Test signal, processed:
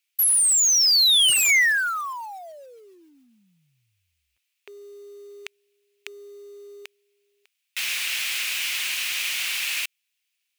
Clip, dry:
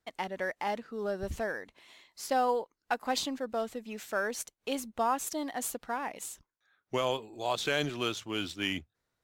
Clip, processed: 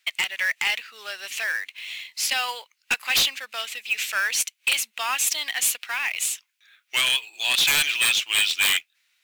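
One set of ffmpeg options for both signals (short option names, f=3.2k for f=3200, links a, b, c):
-af "highpass=f=2.5k:t=q:w=3.4,acrusher=bits=4:mode=log:mix=0:aa=0.000001,aeval=exprs='0.422*sin(PI/2*8.91*val(0)/0.422)':c=same,volume=-7.5dB"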